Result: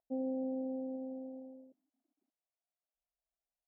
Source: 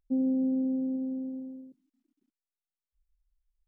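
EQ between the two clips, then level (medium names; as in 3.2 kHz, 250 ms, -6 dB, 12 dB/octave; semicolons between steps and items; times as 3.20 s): band-pass filter 680 Hz, Q 5.6; +11.0 dB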